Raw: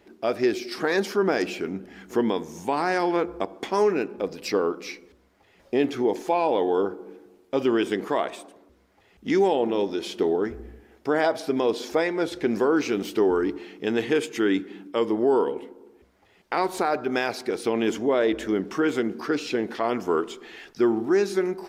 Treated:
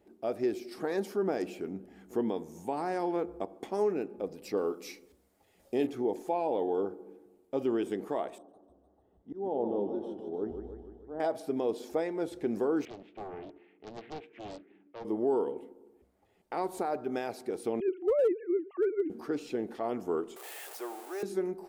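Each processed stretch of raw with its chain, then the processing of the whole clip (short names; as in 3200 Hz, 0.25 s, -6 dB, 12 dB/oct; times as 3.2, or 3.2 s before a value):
4.57–5.87 high shelf 3000 Hz +11.5 dB + doubler 38 ms -13.5 dB
8.38–11.2 running mean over 19 samples + auto swell 0.248 s + warbling echo 0.151 s, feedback 60%, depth 147 cents, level -7.5 dB
12.85–15.05 ladder low-pass 2700 Hz, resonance 50% + low shelf 270 Hz -7 dB + Doppler distortion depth 0.94 ms
17.8–19.1 sine-wave speech + dynamic EQ 500 Hz, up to +5 dB, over -32 dBFS, Q 2.3 + hard clip -14 dBFS
20.36–21.23 zero-crossing step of -28 dBFS + HPF 540 Hz 24 dB/oct + high shelf 8900 Hz +5 dB
whole clip: band shelf 2800 Hz -8.5 dB 2.6 oct; notch 1000 Hz, Q 12; gain -7.5 dB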